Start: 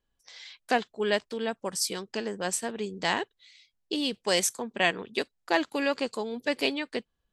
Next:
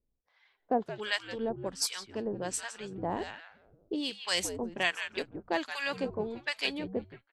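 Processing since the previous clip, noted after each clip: on a send: frequency-shifting echo 0.172 s, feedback 39%, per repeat -92 Hz, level -10.5 dB; on the sum: low-pass opened by the level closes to 590 Hz, open at -24 dBFS; harmonic tremolo 1.3 Hz, depth 100%, crossover 910 Hz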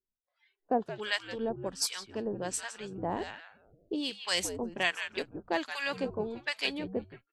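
spectral noise reduction 18 dB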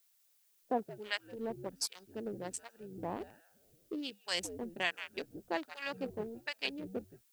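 Wiener smoothing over 41 samples; added noise blue -67 dBFS; low shelf 100 Hz -6.5 dB; gain -4 dB

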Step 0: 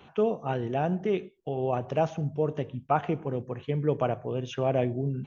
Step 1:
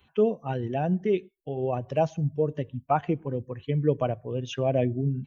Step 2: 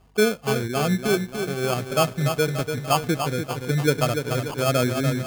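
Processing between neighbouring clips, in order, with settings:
per-bin expansion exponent 1.5; dynamic EQ 1400 Hz, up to -5 dB, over -42 dBFS, Q 0.84; gain +5 dB
hum 50 Hz, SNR 34 dB; sample-and-hold 23×; lo-fi delay 0.291 s, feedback 55%, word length 8-bit, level -6.5 dB; gain +3 dB

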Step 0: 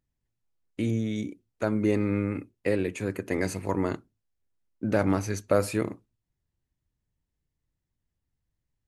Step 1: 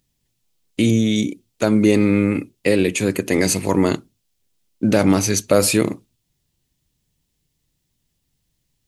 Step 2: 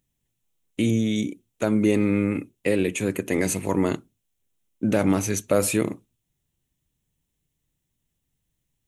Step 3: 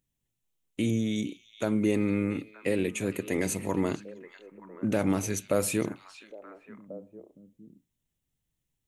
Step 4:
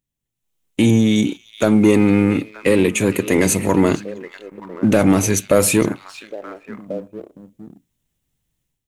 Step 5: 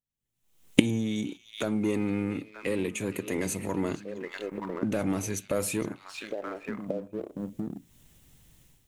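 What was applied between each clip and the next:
EQ curve 100 Hz 0 dB, 150 Hz +6 dB, 1600 Hz +1 dB, 3200 Hz +12 dB; in parallel at +2 dB: limiter -13.5 dBFS, peak gain reduction 7 dB
bell 4700 Hz -11.5 dB 0.41 oct; gain -5.5 dB
delay with a stepping band-pass 0.463 s, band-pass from 3600 Hz, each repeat -1.4 oct, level -9.5 dB; gain -5.5 dB
AGC gain up to 11 dB; sample leveller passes 1
recorder AGC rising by 41 dB/s; gain -15 dB

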